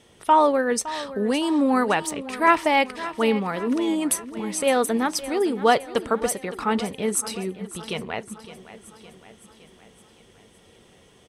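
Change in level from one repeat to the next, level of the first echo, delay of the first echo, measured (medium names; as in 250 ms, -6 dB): -5.0 dB, -15.0 dB, 563 ms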